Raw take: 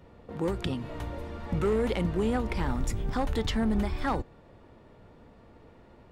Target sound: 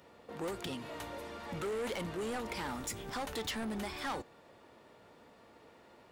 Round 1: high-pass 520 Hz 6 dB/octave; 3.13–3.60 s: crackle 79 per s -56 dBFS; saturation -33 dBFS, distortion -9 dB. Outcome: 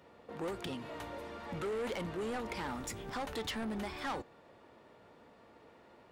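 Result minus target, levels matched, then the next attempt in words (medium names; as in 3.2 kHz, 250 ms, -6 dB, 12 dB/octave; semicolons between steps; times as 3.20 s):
8 kHz band -3.5 dB
high-pass 520 Hz 6 dB/octave; treble shelf 4.3 kHz +8 dB; 3.13–3.60 s: crackle 79 per s -56 dBFS; saturation -33 dBFS, distortion -8 dB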